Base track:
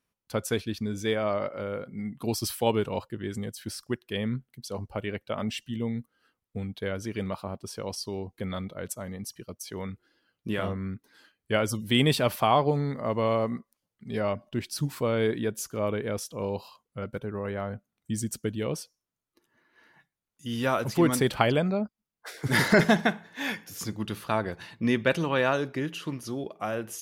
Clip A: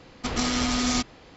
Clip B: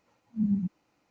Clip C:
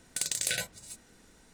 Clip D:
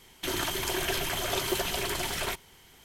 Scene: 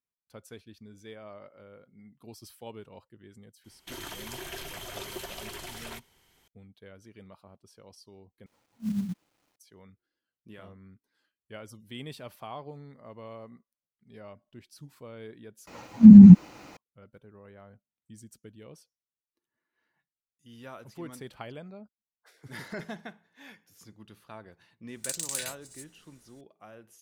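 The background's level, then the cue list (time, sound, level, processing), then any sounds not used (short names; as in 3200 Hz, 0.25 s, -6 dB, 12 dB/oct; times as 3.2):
base track -18.5 dB
3.64 add D -10 dB
8.46 replace with B -3.5 dB + companded quantiser 6-bit
15.67 replace with B -1.5 dB + maximiser +25.5 dB
24.88 add C -9 dB + high shelf 4700 Hz +9.5 dB
not used: A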